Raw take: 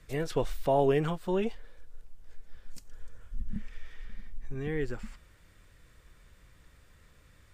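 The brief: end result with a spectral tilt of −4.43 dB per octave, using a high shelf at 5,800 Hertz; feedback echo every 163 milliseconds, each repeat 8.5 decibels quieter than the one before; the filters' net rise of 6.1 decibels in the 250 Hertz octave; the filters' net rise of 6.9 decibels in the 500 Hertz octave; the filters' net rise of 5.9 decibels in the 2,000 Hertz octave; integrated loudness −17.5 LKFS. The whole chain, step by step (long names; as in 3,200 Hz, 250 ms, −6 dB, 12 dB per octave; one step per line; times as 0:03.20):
parametric band 250 Hz +6 dB
parametric band 500 Hz +6.5 dB
parametric band 2,000 Hz +6 dB
high-shelf EQ 5,800 Hz +5 dB
repeating echo 163 ms, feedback 38%, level −8.5 dB
level +7.5 dB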